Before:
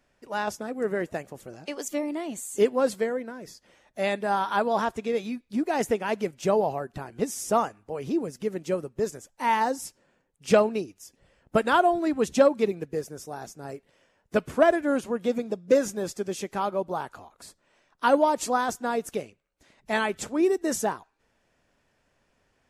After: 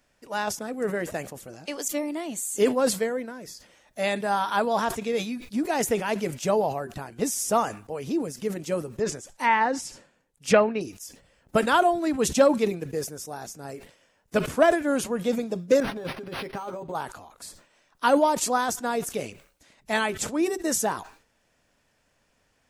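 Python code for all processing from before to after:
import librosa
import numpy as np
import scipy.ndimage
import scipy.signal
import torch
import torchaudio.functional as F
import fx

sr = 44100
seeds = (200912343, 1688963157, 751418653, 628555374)

y = fx.chain(x, sr, fx.env_lowpass_down(base_hz=2400.0, full_db=-20.0),
    fx.dynamic_eq(hz=2000.0, q=1.3, threshold_db=-41.0, ratio=4.0, max_db=7), at=(8.95, 10.81))
y = fx.chain(y, sr, fx.comb(ms=7.5, depth=0.46),
    fx.over_compress(threshold_db=-32.0, ratio=-1.0),
    fx.resample_linear(factor=6), at=(15.8, 16.95))
y = fx.high_shelf(y, sr, hz=3800.0, db=7.0)
y = fx.notch(y, sr, hz=380.0, q=12.0)
y = fx.sustainer(y, sr, db_per_s=120.0)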